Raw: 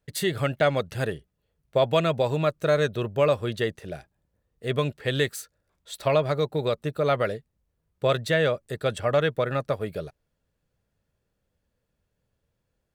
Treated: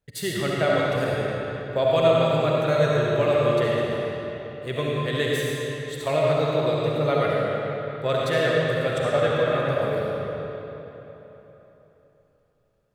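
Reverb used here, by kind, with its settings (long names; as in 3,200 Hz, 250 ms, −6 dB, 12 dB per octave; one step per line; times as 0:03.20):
comb and all-pass reverb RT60 3.6 s, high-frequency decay 0.75×, pre-delay 25 ms, DRR −5 dB
level −3.5 dB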